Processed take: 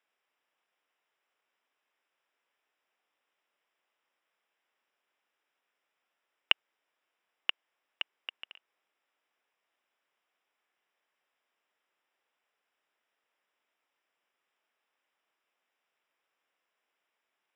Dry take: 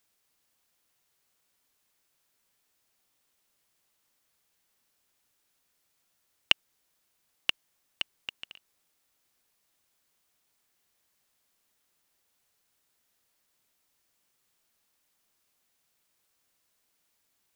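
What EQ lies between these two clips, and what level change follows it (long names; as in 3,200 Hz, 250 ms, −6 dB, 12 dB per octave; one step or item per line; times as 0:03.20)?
Savitzky-Golay smoothing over 25 samples
high-pass filter 430 Hz 12 dB per octave
0.0 dB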